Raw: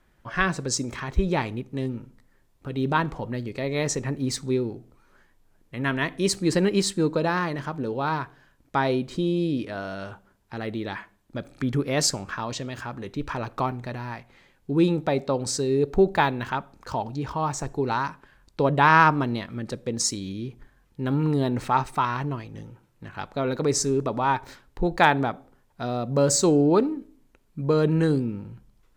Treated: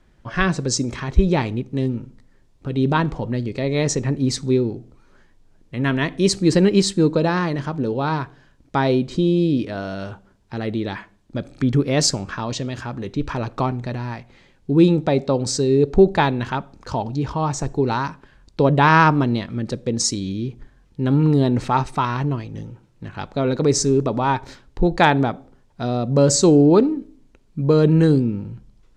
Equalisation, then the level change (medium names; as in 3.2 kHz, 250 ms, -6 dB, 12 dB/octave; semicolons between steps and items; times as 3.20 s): low-pass 6.6 kHz 12 dB/octave; peaking EQ 1.4 kHz -6.5 dB 2.7 oct; +8.0 dB